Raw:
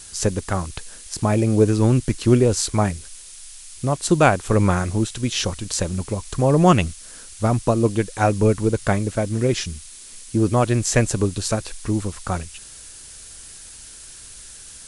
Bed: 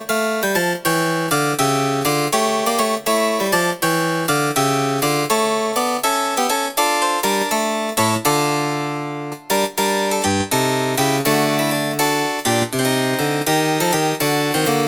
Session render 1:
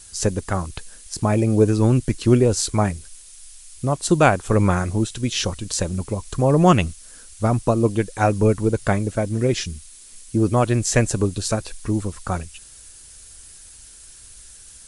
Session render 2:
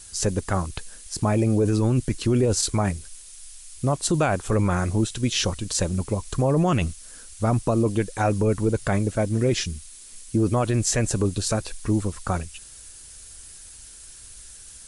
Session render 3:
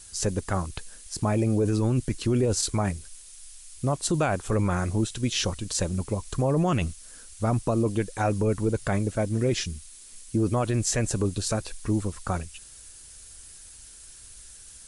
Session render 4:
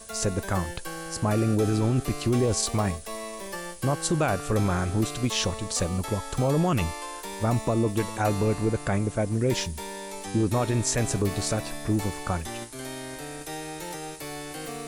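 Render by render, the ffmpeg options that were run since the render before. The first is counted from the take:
-af "afftdn=nr=6:nf=-41"
-af "alimiter=limit=0.237:level=0:latency=1:release=11"
-af "volume=0.708"
-filter_complex "[1:a]volume=0.112[s0];[0:a][s0]amix=inputs=2:normalize=0"

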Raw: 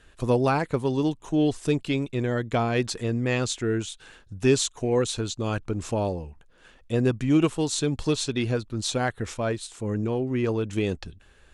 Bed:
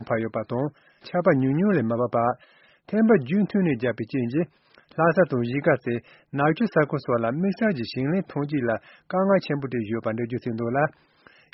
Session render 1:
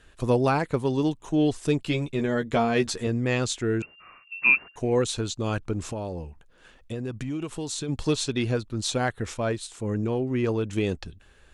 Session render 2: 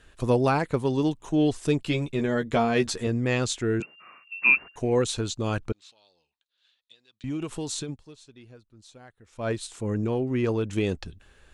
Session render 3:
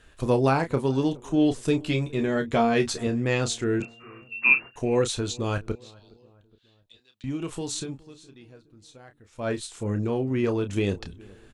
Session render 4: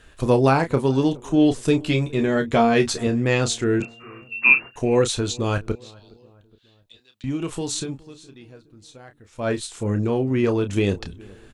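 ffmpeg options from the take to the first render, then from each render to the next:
-filter_complex "[0:a]asettb=1/sr,asplit=3[s0][s1][s2];[s0]atrim=end=1.844[s3];[s1]atrim=start=1.84:end=3.07,asetpts=PTS-STARTPTS,afade=t=in:d=0.004:c=qsin,afade=t=out:st=1.226:d=0.004:c=qsin,asplit=2[s4][s5];[s5]adelay=13,volume=0.562[s6];[s4][s6]amix=inputs=2:normalize=0,atrim=end_sample=54243[s7];[s2]atrim=start=3.066[s8];[s3][s7]acrossfade=d=0.004:c1=hsin:c2=qsin[s9];[s9][s8]acrossfade=d=0.004:c1=qsin:c2=hsin,asettb=1/sr,asplit=3[s10][s11][s12];[s10]atrim=end=3.824[s13];[s11]atrim=start=3.82:end=4.76,asetpts=PTS-STARTPTS,afade=t=in:d=0.004:c=qsin,afade=t=out:st=0.936:d=0.004:c=qsin,lowpass=f=2400:t=q:w=0.5098,lowpass=f=2400:t=q:w=0.6013,lowpass=f=2400:t=q:w=0.9,lowpass=f=2400:t=q:w=2.563,afreqshift=-2800[s14];[s12]atrim=start=4.756[s15];[s13][s14]acrossfade=d=0.004:c1=hsin:c2=qsin[s16];[s16][s15]acrossfade=d=0.004:c1=qsin:c2=hsin,asplit=3[s17][s18][s19];[s17]afade=t=out:st=5.9:d=0.02[s20];[s18]acompressor=threshold=0.0398:ratio=6:attack=3.2:release=140:knee=1:detection=peak,afade=t=in:st=5.9:d=0.02,afade=t=out:st=7.88:d=0.02[s21];[s19]afade=t=in:st=7.88:d=0.02[s22];[s20][s21][s22]amix=inputs=3:normalize=0"
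-filter_complex "[0:a]asettb=1/sr,asplit=3[s0][s1][s2];[s0]atrim=end=3.804[s3];[s1]atrim=start=3.8:end=4.51,asetpts=PTS-STARTPTS,afade=t=in:d=0.004:c=qsin,afade=t=out:st=0.706:d=0.004:c=qsin,highpass=f=150:w=0.5412,highpass=f=150:w=1.3066[s4];[s2]atrim=start=4.506[s5];[s3][s4]acrossfade=d=0.004:c1=hsin:c2=qsin[s6];[s6][s5]acrossfade=d=0.004:c1=qsin:c2=hsin,asettb=1/sr,asplit=3[s7][s8][s9];[s7]atrim=end=5.724[s10];[s8]atrim=start=5.72:end=7.24,asetpts=PTS-STARTPTS,afade=t=in:d=0.004:c=qsin,afade=t=out:st=1.516:d=0.004:c=qsin,bandpass=f=3900:t=q:w=5.4[s11];[s9]atrim=start=7.236[s12];[s10][s11]acrossfade=d=0.004:c1=hsin:c2=qsin[s13];[s13][s12]acrossfade=d=0.004:c1=qsin:c2=hsin,asplit=3[s14][s15][s16];[s14]atrim=end=7.99,asetpts=PTS-STARTPTS,afade=t=out:st=7.8:d=0.19:silence=0.0668344[s17];[s15]atrim=start=7.99:end=9.32,asetpts=PTS-STARTPTS,volume=0.0668[s18];[s16]atrim=start=9.32,asetpts=PTS-STARTPTS,afade=t=in:d=0.19:silence=0.0668344[s19];[s17][s18][s19]concat=n=3:v=0:a=1"
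-filter_complex "[0:a]asplit=2[s0][s1];[s1]adelay=30,volume=0.355[s2];[s0][s2]amix=inputs=2:normalize=0,asplit=2[s3][s4];[s4]adelay=416,lowpass=f=1300:p=1,volume=0.0668,asplit=2[s5][s6];[s6]adelay=416,lowpass=f=1300:p=1,volume=0.52,asplit=2[s7][s8];[s8]adelay=416,lowpass=f=1300:p=1,volume=0.52[s9];[s3][s5][s7][s9]amix=inputs=4:normalize=0"
-af "volume=1.68,alimiter=limit=0.708:level=0:latency=1"

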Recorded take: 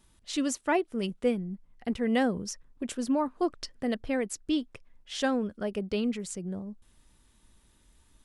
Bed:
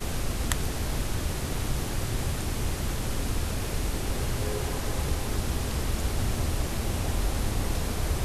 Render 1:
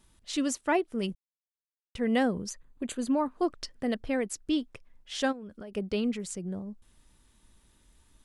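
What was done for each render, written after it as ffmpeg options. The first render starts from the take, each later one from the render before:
-filter_complex "[0:a]asplit=3[s0][s1][s2];[s0]afade=t=out:st=2.49:d=0.02[s3];[s1]asuperstop=centerf=5400:order=20:qfactor=6,afade=t=in:st=2.49:d=0.02,afade=t=out:st=3.3:d=0.02[s4];[s2]afade=t=in:st=3.3:d=0.02[s5];[s3][s4][s5]amix=inputs=3:normalize=0,asplit=3[s6][s7][s8];[s6]afade=t=out:st=5.31:d=0.02[s9];[s7]acompressor=threshold=0.0126:ratio=16:attack=3.2:release=140:knee=1:detection=peak,afade=t=in:st=5.31:d=0.02,afade=t=out:st=5.74:d=0.02[s10];[s8]afade=t=in:st=5.74:d=0.02[s11];[s9][s10][s11]amix=inputs=3:normalize=0,asplit=3[s12][s13][s14];[s12]atrim=end=1.15,asetpts=PTS-STARTPTS,afade=t=out:st=1.146:d=0.004:c=hsin[s15];[s13]atrim=start=1.15:end=1.95,asetpts=PTS-STARTPTS,volume=0[s16];[s14]atrim=start=1.95,asetpts=PTS-STARTPTS,afade=t=in:d=0.004:c=hsin[s17];[s15][s16][s17]concat=n=3:v=0:a=1"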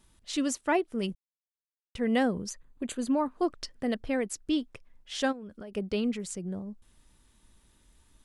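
-af anull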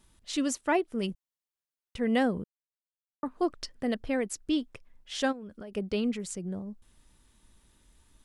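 -filter_complex "[0:a]asplit=3[s0][s1][s2];[s0]atrim=end=2.44,asetpts=PTS-STARTPTS,afade=t=out:st=2.436:d=0.004:c=hsin[s3];[s1]atrim=start=2.44:end=3.23,asetpts=PTS-STARTPTS,volume=0[s4];[s2]atrim=start=3.23,asetpts=PTS-STARTPTS,afade=t=in:d=0.004:c=hsin[s5];[s3][s4][s5]concat=n=3:v=0:a=1"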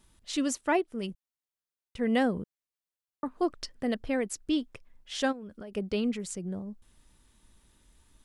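-filter_complex "[0:a]asplit=3[s0][s1][s2];[s0]atrim=end=0.822[s3];[s1]atrim=start=0.818:end=1.992,asetpts=PTS-STARTPTS,volume=0.668[s4];[s2]atrim=start=1.988[s5];[s3][s4]acrossfade=d=0.004:c1=hsin:c2=hsin[s6];[s6][s5]acrossfade=d=0.004:c1=hsin:c2=hsin"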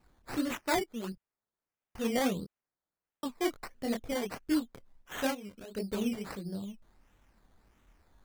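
-af "flanger=delay=19.5:depth=6.9:speed=2.2,acrusher=samples=13:mix=1:aa=0.000001:lfo=1:lforange=7.8:lforate=1.5"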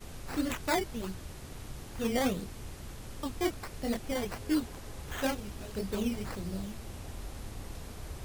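-filter_complex "[1:a]volume=0.188[s0];[0:a][s0]amix=inputs=2:normalize=0"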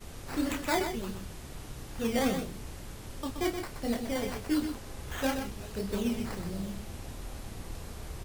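-filter_complex "[0:a]asplit=2[s0][s1];[s1]adelay=30,volume=0.355[s2];[s0][s2]amix=inputs=2:normalize=0,asplit=2[s3][s4];[s4]aecho=0:1:125:0.422[s5];[s3][s5]amix=inputs=2:normalize=0"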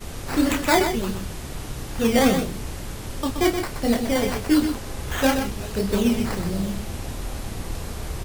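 -af "volume=3.35"

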